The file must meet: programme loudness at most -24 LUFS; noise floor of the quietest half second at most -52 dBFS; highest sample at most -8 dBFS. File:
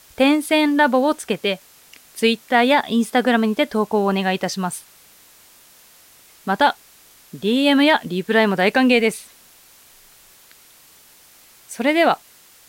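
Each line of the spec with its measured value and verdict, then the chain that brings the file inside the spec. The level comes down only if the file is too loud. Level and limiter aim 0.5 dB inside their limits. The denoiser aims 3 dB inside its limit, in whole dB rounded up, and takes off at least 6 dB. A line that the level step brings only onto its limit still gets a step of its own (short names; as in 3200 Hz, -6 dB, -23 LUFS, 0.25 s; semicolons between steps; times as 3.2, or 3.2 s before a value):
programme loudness -18.5 LUFS: fail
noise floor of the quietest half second -50 dBFS: fail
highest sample -4.5 dBFS: fail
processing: gain -6 dB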